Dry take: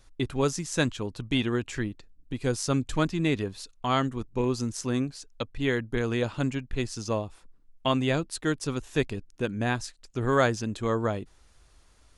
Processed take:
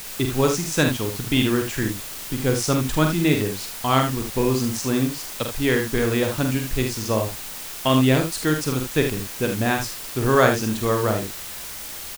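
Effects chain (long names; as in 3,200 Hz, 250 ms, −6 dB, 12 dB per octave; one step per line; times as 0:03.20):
background noise white −41 dBFS
ambience of single reflections 46 ms −6 dB, 77 ms −8 dB
level +5 dB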